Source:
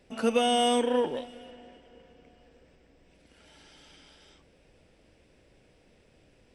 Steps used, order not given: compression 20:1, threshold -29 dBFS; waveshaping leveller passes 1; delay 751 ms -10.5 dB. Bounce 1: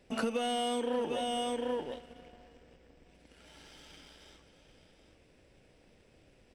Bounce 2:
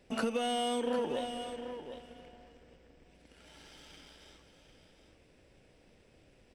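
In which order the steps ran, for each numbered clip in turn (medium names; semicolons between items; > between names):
delay > waveshaping leveller > compression; waveshaping leveller > compression > delay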